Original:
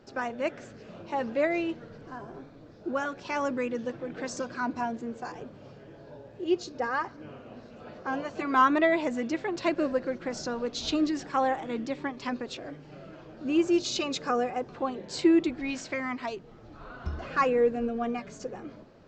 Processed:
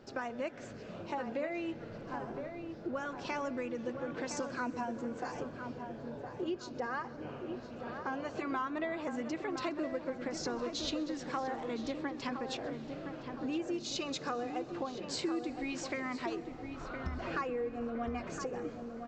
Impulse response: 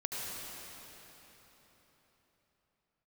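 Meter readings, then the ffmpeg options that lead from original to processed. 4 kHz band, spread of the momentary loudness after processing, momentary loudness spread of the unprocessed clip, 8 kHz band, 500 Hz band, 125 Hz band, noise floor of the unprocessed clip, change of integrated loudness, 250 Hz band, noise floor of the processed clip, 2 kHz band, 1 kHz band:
-5.0 dB, 7 LU, 22 LU, -4.5 dB, -8.0 dB, -2.5 dB, -50 dBFS, -9.0 dB, -8.0 dB, -47 dBFS, -7.5 dB, -9.0 dB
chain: -filter_complex "[0:a]acompressor=threshold=0.0178:ratio=5,asplit=2[s0][s1];[s1]adelay=1014,lowpass=f=1700:p=1,volume=0.473,asplit=2[s2][s3];[s3]adelay=1014,lowpass=f=1700:p=1,volume=0.5,asplit=2[s4][s5];[s5]adelay=1014,lowpass=f=1700:p=1,volume=0.5,asplit=2[s6][s7];[s7]adelay=1014,lowpass=f=1700:p=1,volume=0.5,asplit=2[s8][s9];[s9]adelay=1014,lowpass=f=1700:p=1,volume=0.5,asplit=2[s10][s11];[s11]adelay=1014,lowpass=f=1700:p=1,volume=0.5[s12];[s0][s2][s4][s6][s8][s10][s12]amix=inputs=7:normalize=0,asplit=2[s13][s14];[1:a]atrim=start_sample=2205,adelay=130[s15];[s14][s15]afir=irnorm=-1:irlink=0,volume=0.0841[s16];[s13][s16]amix=inputs=2:normalize=0"

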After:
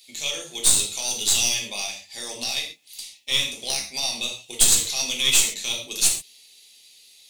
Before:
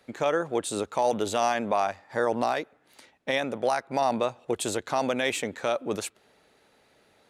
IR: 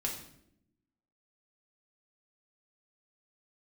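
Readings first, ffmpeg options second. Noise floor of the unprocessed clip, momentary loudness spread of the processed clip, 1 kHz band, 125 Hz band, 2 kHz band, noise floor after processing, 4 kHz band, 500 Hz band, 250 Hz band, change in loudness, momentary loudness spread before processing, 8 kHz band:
-64 dBFS, 13 LU, -13.0 dB, -2.0 dB, +3.0 dB, -53 dBFS, +15.5 dB, -13.5 dB, -9.5 dB, +6.5 dB, 5 LU, +18.5 dB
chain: -filter_complex "[0:a]aexciter=amount=14.8:drive=10:freq=2500,aeval=exprs='3.76*(cos(1*acos(clip(val(0)/3.76,-1,1)))-cos(1*PI/2))+1.19*(cos(2*acos(clip(val(0)/3.76,-1,1)))-cos(2*PI/2))':c=same[s0];[1:a]atrim=start_sample=2205,afade=t=out:st=0.19:d=0.01,atrim=end_sample=8820[s1];[s0][s1]afir=irnorm=-1:irlink=0,volume=0.158"

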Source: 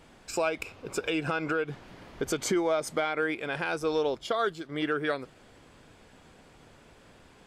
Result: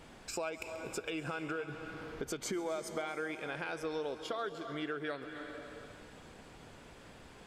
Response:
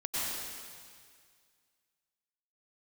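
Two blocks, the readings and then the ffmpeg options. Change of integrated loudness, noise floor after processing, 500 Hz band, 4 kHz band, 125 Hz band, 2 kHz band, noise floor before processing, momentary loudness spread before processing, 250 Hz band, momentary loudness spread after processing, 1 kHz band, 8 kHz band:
-9.5 dB, -55 dBFS, -9.5 dB, -8.0 dB, -7.5 dB, -8.5 dB, -56 dBFS, 9 LU, -8.5 dB, 16 LU, -9.0 dB, -6.5 dB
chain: -filter_complex "[0:a]asplit=2[s0][s1];[1:a]atrim=start_sample=2205,adelay=135[s2];[s1][s2]afir=irnorm=-1:irlink=0,volume=0.15[s3];[s0][s3]amix=inputs=2:normalize=0,acompressor=threshold=0.00562:ratio=2,volume=1.12"

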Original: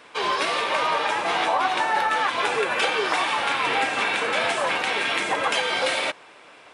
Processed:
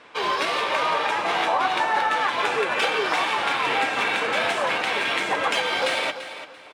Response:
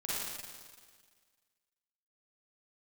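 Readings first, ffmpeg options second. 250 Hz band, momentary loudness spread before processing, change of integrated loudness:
+0.5 dB, 2 LU, 0.0 dB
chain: -filter_complex "[0:a]adynamicsmooth=sensitivity=3.5:basefreq=6700,asplit=2[s0][s1];[s1]aecho=0:1:339|678|1017:0.251|0.0628|0.0157[s2];[s0][s2]amix=inputs=2:normalize=0"

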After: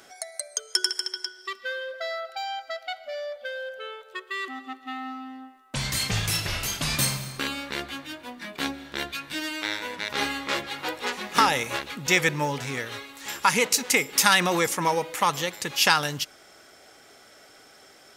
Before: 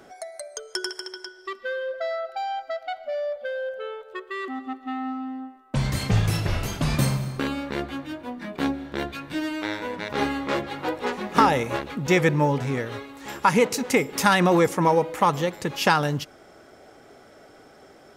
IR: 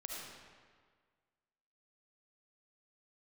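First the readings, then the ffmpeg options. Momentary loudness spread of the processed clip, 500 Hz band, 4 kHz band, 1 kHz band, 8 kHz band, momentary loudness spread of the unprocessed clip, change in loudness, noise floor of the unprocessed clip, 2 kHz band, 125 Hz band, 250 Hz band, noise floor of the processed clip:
15 LU, -6.5 dB, +6.5 dB, -2.5 dB, +8.0 dB, 15 LU, -1.0 dB, -51 dBFS, +2.0 dB, -8.5 dB, -8.0 dB, -53 dBFS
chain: -af "tiltshelf=f=1400:g=-8.5"

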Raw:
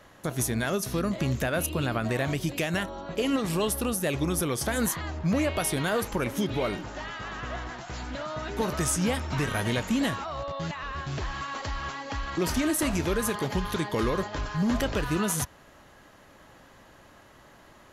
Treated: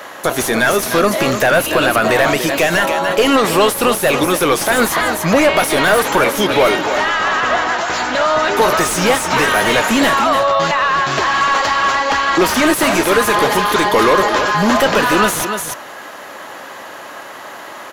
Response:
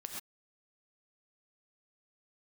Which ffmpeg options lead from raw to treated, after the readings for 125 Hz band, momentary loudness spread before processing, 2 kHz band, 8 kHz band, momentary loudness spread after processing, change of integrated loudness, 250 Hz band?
+4.0 dB, 8 LU, +19.0 dB, +11.5 dB, 17 LU, +15.0 dB, +10.0 dB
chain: -filter_complex "[0:a]aemphasis=mode=production:type=bsi,aecho=1:1:294:0.266,asplit=2[s0][s1];[s1]highpass=f=720:p=1,volume=28.2,asoftclip=type=tanh:threshold=0.708[s2];[s0][s2]amix=inputs=2:normalize=0,lowpass=f=1200:p=1,volume=0.501,volume=1.68"

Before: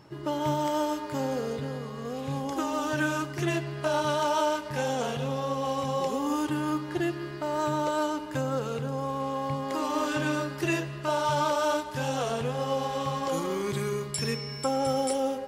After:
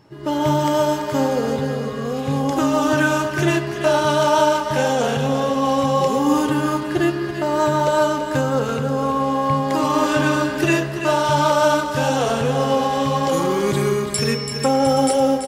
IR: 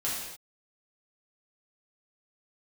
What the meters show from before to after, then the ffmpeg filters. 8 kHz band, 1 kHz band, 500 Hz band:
+9.5 dB, +10.0 dB, +10.5 dB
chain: -filter_complex "[0:a]asplit=2[s0][s1];[s1]highshelf=f=2200:t=q:w=3:g=-11.5[s2];[1:a]atrim=start_sample=2205,lowpass=f=1400:w=0.5412,lowpass=f=1400:w=1.3066[s3];[s2][s3]afir=irnorm=-1:irlink=0,volume=0.2[s4];[s0][s4]amix=inputs=2:normalize=0,dynaudnorm=f=160:g=3:m=2.82,aecho=1:1:335:0.355"

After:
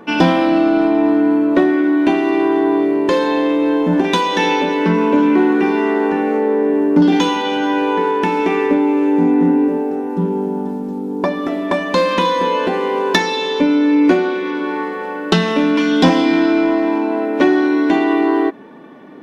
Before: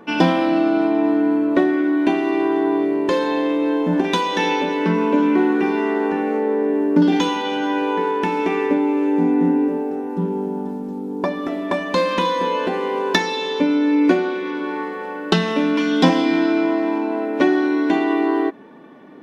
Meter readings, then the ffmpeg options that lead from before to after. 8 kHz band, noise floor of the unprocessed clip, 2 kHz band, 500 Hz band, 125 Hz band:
no reading, -29 dBFS, +3.5 dB, +4.0 dB, +3.5 dB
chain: -af "acontrast=34,volume=0.891"

